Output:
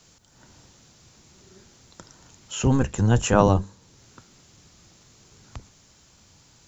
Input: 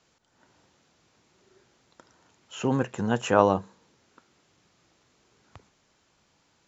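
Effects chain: octaver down 1 oct, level 0 dB; tone controls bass +6 dB, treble +11 dB; in parallel at -0.5 dB: compressor, threshold -42 dBFS, peak gain reduction 28 dB

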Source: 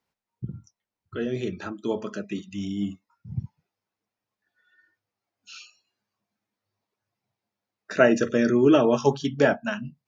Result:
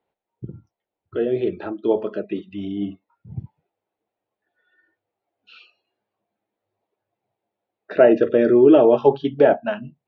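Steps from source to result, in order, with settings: steep low-pass 3800 Hz 36 dB/oct; band shelf 510 Hz +10 dB; in parallel at +2 dB: limiter -6 dBFS, peak gain reduction 8.5 dB; on the sum: gain -8 dB

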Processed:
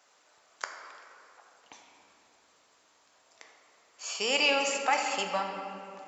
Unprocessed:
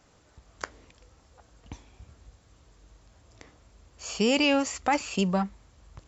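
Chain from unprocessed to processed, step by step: HPF 710 Hz 12 dB/oct; reverb RT60 3.0 s, pre-delay 7 ms, DRR 2.5 dB

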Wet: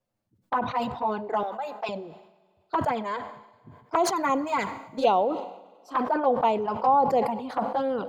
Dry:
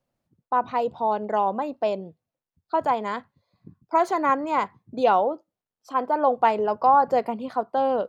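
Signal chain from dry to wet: 4.16–5.12 high shelf 4100 Hz +10 dB; envelope flanger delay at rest 9.6 ms, full sweep at -16 dBFS; 1.43–1.89 HPF 800 Hz 12 dB/oct; Schroeder reverb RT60 2.2 s, combs from 33 ms, DRR 19.5 dB; sustainer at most 73 dB/s

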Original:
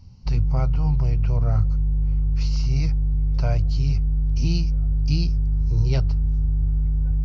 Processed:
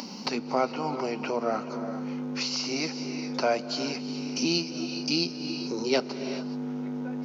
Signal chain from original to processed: steep high-pass 220 Hz 48 dB/oct; non-linear reverb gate 0.45 s rising, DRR 11.5 dB; upward compressor, threshold -33 dBFS; gain +7.5 dB

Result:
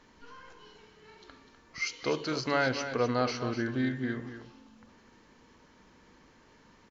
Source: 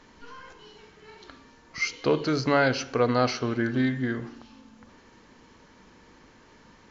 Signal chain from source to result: 1.86–2.67 tilt +1.5 dB/oct; on a send: echo 0.25 s -10 dB; on the sum: gain -5.5 dB

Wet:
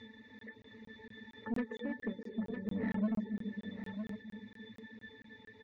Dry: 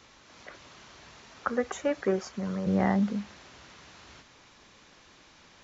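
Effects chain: graphic EQ 125/250/1000/2000 Hz -10/+10/-11/+11 dB; in parallel at -2 dB: upward compressor, threshold -26 dBFS; on the sum: octave resonator A, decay 0.23 s; on a send at -10.5 dB: bell 380 Hz +12.5 dB 0.44 oct + reverb RT60 2.0 s, pre-delay 80 ms; on the sum: soft clip -30 dBFS, distortion -10 dB; echo 0.956 s -9 dB; reverb removal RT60 0.53 s; crackling interface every 0.23 s, samples 1024, zero, from 0.39; gain +2 dB

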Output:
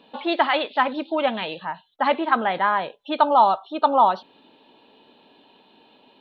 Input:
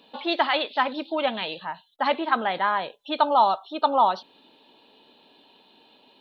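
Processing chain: tone controls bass +2 dB, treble -12 dB; gain +3 dB

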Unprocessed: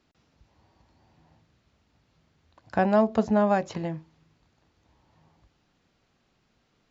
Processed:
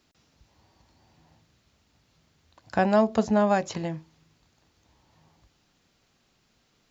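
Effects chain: high shelf 4100 Hz +11 dB

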